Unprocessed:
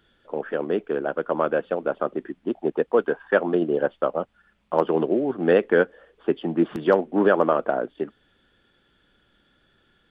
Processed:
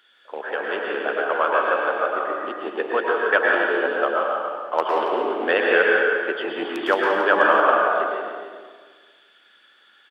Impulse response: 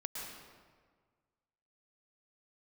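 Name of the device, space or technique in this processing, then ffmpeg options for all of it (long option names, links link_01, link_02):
stadium PA: -filter_complex "[0:a]highpass=210,highpass=frequency=230:poles=1,highpass=frequency=1300:poles=1,equalizer=frequency=2300:width_type=o:width=2.9:gain=4.5,aecho=1:1:177.8|277:0.282|0.316[link_01];[1:a]atrim=start_sample=2205[link_02];[link_01][link_02]afir=irnorm=-1:irlink=0,volume=8dB"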